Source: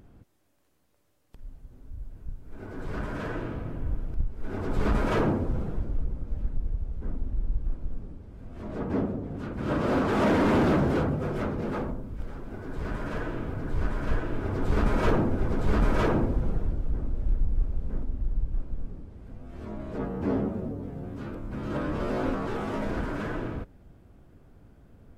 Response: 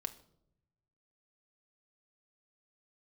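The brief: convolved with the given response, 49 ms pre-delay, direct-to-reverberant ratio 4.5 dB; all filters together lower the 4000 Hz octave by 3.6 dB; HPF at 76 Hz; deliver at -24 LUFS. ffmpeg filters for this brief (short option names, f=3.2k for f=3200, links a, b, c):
-filter_complex "[0:a]highpass=76,equalizer=f=4k:t=o:g=-5,asplit=2[a][b];[1:a]atrim=start_sample=2205,adelay=49[c];[b][c]afir=irnorm=-1:irlink=0,volume=-3.5dB[d];[a][d]amix=inputs=2:normalize=0,volume=5.5dB"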